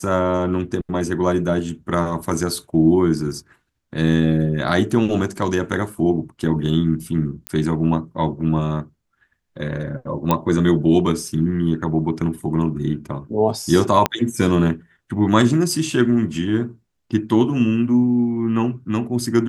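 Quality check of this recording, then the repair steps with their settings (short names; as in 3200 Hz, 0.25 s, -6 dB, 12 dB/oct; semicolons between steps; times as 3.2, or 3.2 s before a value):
7.47 pop -10 dBFS
10.31 pop -4 dBFS
14.06 pop -2 dBFS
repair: de-click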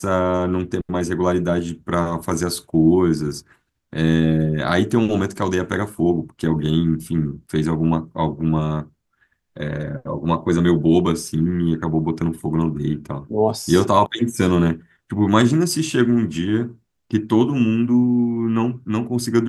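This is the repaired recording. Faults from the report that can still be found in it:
14.06 pop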